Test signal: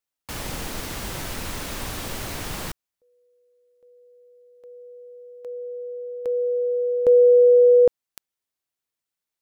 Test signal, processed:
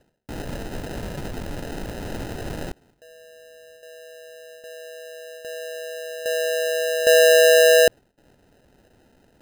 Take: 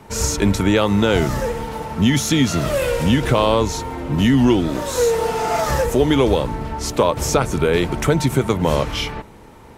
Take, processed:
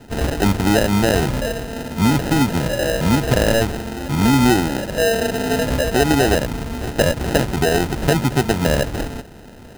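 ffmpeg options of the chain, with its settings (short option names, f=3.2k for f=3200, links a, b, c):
-af "areverse,acompressor=mode=upward:threshold=-34dB:ratio=2.5:attack=9.7:release=179:knee=2.83:detection=peak,areverse,acrusher=samples=39:mix=1:aa=0.000001"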